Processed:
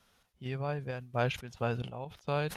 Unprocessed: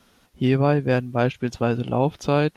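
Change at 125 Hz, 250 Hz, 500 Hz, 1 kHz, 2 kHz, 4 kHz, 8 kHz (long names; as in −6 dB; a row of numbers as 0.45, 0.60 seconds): −12.5 dB, −18.0 dB, −13.5 dB, −11.0 dB, −9.5 dB, −8.0 dB, can't be measured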